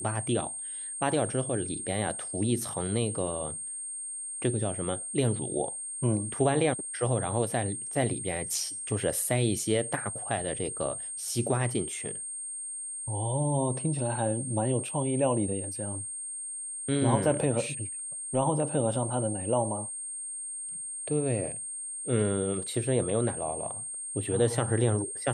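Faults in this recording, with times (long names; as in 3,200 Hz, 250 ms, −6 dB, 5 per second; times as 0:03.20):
whistle 8,600 Hz −35 dBFS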